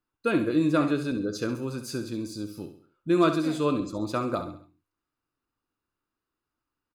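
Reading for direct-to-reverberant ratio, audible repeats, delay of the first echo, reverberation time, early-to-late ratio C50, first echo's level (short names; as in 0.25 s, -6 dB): none, 4, 67 ms, none, none, -10.0 dB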